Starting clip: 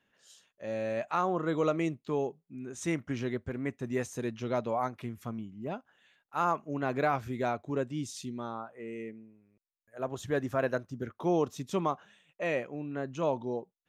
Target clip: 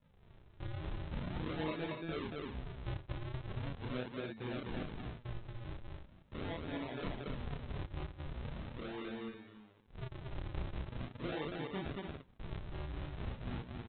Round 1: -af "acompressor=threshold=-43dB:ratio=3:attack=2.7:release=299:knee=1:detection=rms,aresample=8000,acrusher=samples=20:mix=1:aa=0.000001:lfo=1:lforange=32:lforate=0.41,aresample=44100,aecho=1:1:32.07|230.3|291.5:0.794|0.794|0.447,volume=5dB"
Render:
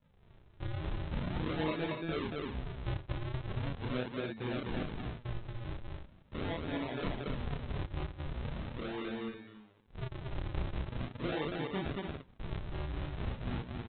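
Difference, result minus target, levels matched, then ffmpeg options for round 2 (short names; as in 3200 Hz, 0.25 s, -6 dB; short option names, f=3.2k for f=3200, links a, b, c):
compressor: peak gain reduction -4.5 dB
-af "acompressor=threshold=-49.5dB:ratio=3:attack=2.7:release=299:knee=1:detection=rms,aresample=8000,acrusher=samples=20:mix=1:aa=0.000001:lfo=1:lforange=32:lforate=0.41,aresample=44100,aecho=1:1:32.07|230.3|291.5:0.794|0.794|0.447,volume=5dB"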